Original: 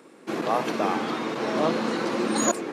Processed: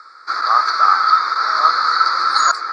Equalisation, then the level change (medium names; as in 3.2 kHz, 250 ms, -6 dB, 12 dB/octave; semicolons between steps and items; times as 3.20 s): resonant high-pass 1.3 kHz, resonance Q 16; Butterworth band-stop 2.9 kHz, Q 1.4; resonant low-pass 4.6 kHz, resonance Q 12; +3.0 dB